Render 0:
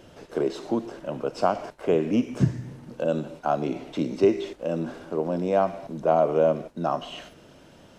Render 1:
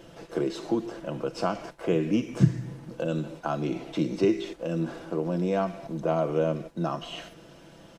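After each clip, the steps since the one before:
dynamic equaliser 710 Hz, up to −8 dB, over −34 dBFS, Q 0.96
comb filter 6 ms, depth 47%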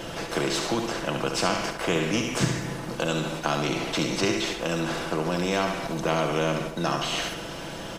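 flutter between parallel walls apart 11.9 metres, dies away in 0.44 s
every bin compressed towards the loudest bin 2 to 1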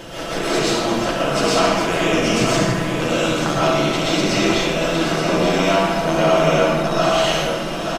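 single-tap delay 879 ms −7 dB
comb and all-pass reverb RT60 0.96 s, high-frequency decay 0.55×, pre-delay 85 ms, DRR −7.5 dB

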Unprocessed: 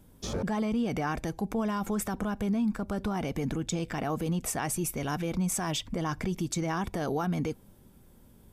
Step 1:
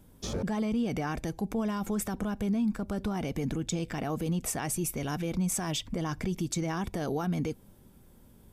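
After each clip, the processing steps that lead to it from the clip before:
dynamic equaliser 1,100 Hz, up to −4 dB, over −43 dBFS, Q 0.8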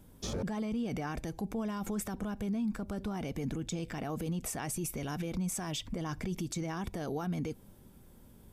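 brickwall limiter −27.5 dBFS, peak gain reduction 7 dB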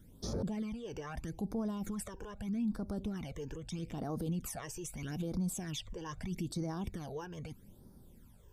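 all-pass phaser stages 12, 0.79 Hz, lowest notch 210–2,800 Hz
level −1.5 dB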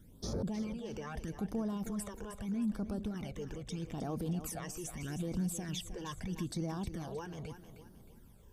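feedback echo with a high-pass in the loop 312 ms, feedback 36%, high-pass 160 Hz, level −10 dB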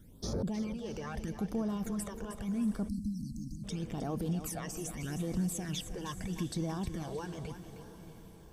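feedback delay with all-pass diffusion 690 ms, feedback 47%, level −14 dB
time-frequency box erased 0:02.89–0:03.64, 310–4,000 Hz
level +2 dB

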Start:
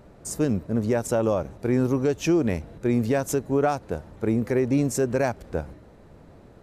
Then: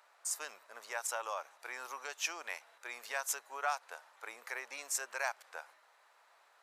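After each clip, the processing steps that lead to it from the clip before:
high-pass filter 930 Hz 24 dB per octave
level −3 dB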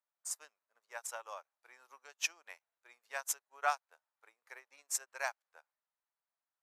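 expander for the loud parts 2.5 to 1, over −55 dBFS
level +4 dB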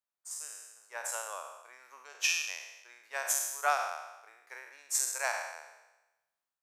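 peak hold with a decay on every bin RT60 1.05 s
automatic gain control gain up to 8.5 dB
level −6.5 dB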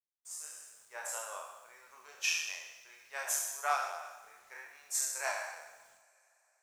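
multi-voice chorus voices 2, 0.61 Hz, delay 29 ms, depth 3.3 ms
bit reduction 11 bits
coupled-rooms reverb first 0.49 s, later 4 s, from −18 dB, DRR 11 dB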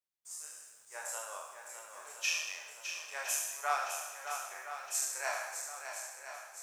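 feedback echo with a long and a short gap by turns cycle 1,015 ms, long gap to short 1.5 to 1, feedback 49%, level −8 dB
level −1 dB

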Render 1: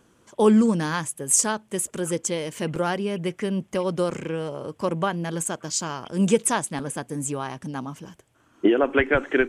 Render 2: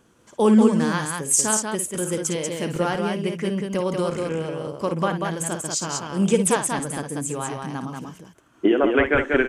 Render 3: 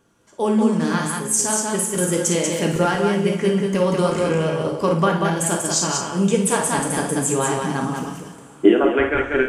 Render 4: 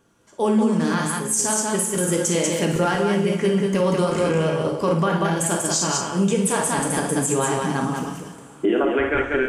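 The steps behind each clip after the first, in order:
loudspeakers that aren't time-aligned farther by 19 metres −9 dB, 65 metres −4 dB
coupled-rooms reverb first 0.51 s, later 4.8 s, from −22 dB, DRR 2 dB; speech leveller within 5 dB 0.5 s; level +1 dB
brickwall limiter −11 dBFS, peak gain reduction 9.5 dB

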